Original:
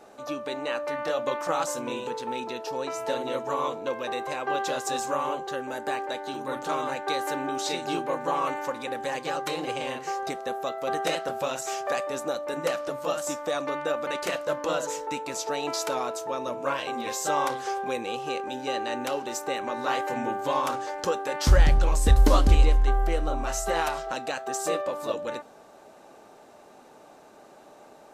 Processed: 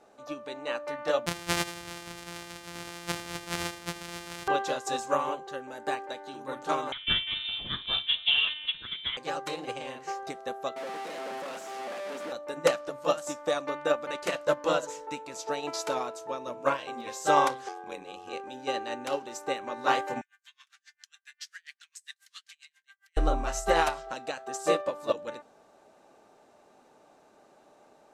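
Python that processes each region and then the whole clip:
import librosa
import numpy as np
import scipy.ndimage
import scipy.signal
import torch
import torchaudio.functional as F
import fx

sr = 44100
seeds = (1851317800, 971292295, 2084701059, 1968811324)

y = fx.chain(x, sr, fx.sample_sort(block=256),
    fx.tilt_shelf(db=-5.5, hz=1100.0),
    fx.echo_single(ms=78, db=-8.5), at=(1.26, 4.48))
y = fx.chain(y, sr, fx.echo_multitap(ms=(43, 62, 255), db=(-15.5, -18.5, -15.5)),
    fx.freq_invert(carrier_hz=3900), at=(6.92, 9.17))
y = fx.chain(y, sr, fx.clip_1bit(),
    fx.steep_highpass(hz=180.0, slope=36),
    fx.high_shelf(hz=3500.0, db=-11.0), at=(10.76, 12.32))
y = fx.chain(y, sr, fx.low_shelf(hz=200.0, db=-5.0),
    fx.ring_mod(carrier_hz=45.0), at=(17.68, 18.33))
y = fx.chain(y, sr, fx.ellip_highpass(hz=1700.0, order=4, stop_db=80),
    fx.tremolo_db(hz=7.4, depth_db=36), at=(20.21, 23.17))
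y = scipy.signal.sosfilt(scipy.signal.butter(2, 11000.0, 'lowpass', fs=sr, output='sos'), y)
y = fx.upward_expand(y, sr, threshold_db=-32.0, expansion=2.5)
y = F.gain(torch.from_numpy(y), 5.5).numpy()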